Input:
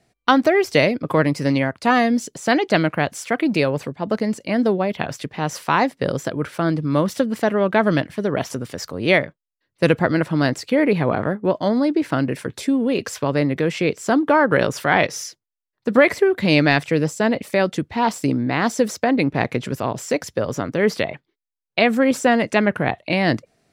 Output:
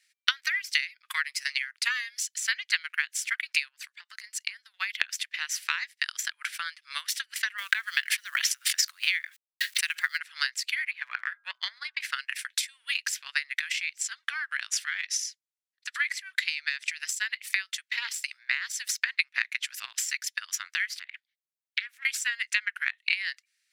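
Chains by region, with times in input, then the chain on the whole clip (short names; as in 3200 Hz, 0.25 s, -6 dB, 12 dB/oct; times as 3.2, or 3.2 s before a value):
3.68–4.74 HPF 110 Hz + dynamic EQ 2500 Hz, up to -4 dB, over -43 dBFS, Q 1.2 + compressor, threshold -27 dBFS
7.58–10.18 HPF 63 Hz 24 dB/oct + companded quantiser 8-bit + fast leveller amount 70%
10.91–12.01 bell 11000 Hz -15 dB 2.2 oct + de-hum 125.3 Hz, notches 13 + transient shaper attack +10 dB, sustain -2 dB
14.01–17 LPF 8300 Hz + compressor 2.5:1, threshold -22 dBFS + high shelf 6000 Hz +7.5 dB
20.99–22.05 notches 60/120/180/240/300/360/420 Hz + compressor 4:1, threshold -33 dBFS + Doppler distortion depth 0.42 ms
whole clip: steep high-pass 1700 Hz 36 dB/oct; compressor 3:1, threshold -33 dBFS; transient shaper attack +9 dB, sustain -6 dB; gain +1.5 dB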